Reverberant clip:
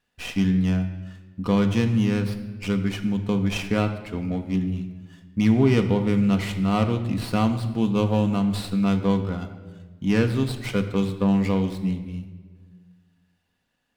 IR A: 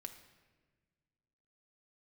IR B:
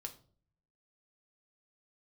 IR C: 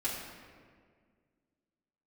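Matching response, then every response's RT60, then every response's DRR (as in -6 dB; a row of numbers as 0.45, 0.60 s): A; 1.4, 0.45, 1.9 s; 5.0, 4.0, -8.5 dB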